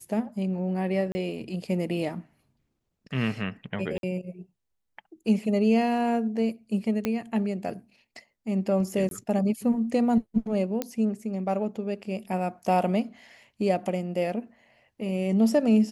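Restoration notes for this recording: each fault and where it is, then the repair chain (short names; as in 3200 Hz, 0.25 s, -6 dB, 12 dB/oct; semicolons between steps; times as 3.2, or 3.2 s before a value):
1.12–1.15 gap 30 ms
3.98–4.03 gap 52 ms
7.05 pop -13 dBFS
9.09–9.11 gap 22 ms
10.82 pop -13 dBFS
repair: de-click; interpolate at 1.12, 30 ms; interpolate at 3.98, 52 ms; interpolate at 9.09, 22 ms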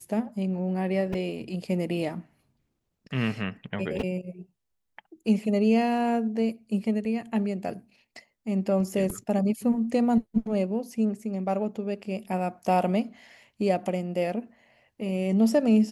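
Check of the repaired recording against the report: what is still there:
7.05 pop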